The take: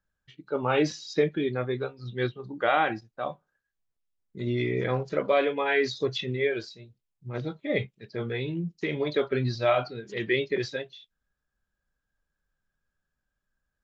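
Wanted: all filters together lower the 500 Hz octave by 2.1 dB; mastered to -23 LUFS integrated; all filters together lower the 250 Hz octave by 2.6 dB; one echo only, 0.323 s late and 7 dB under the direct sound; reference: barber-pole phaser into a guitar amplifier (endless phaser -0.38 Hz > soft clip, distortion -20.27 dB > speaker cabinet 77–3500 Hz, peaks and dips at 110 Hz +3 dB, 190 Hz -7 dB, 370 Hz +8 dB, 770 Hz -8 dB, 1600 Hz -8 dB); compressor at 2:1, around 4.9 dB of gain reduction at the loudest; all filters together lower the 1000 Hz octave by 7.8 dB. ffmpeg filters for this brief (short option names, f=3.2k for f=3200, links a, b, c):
-filter_complex "[0:a]equalizer=f=250:t=o:g=-6.5,equalizer=f=500:t=o:g=-3.5,equalizer=f=1k:t=o:g=-3,acompressor=threshold=-31dB:ratio=2,aecho=1:1:323:0.447,asplit=2[a][b];[b]afreqshift=-0.38[c];[a][c]amix=inputs=2:normalize=1,asoftclip=threshold=-25.5dB,highpass=77,equalizer=f=110:t=q:w=4:g=3,equalizer=f=190:t=q:w=4:g=-7,equalizer=f=370:t=q:w=4:g=8,equalizer=f=770:t=q:w=4:g=-8,equalizer=f=1.6k:t=q:w=4:g=-8,lowpass=f=3.5k:w=0.5412,lowpass=f=3.5k:w=1.3066,volume=14.5dB"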